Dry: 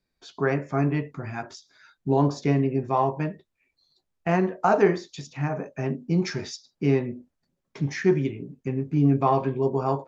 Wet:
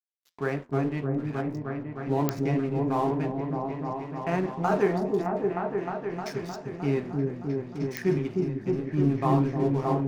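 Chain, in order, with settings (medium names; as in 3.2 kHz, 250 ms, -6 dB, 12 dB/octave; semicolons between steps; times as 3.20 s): 5.29–6.26 s: compression 2:1, threshold -43 dBFS, peak gain reduction 13.5 dB; crossover distortion -39.5 dBFS; delay with an opening low-pass 308 ms, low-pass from 400 Hz, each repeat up 1 oct, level 0 dB; flange 1.9 Hz, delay 6.4 ms, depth 7.2 ms, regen -84%; clicks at 2.29/7.97 s, -10 dBFS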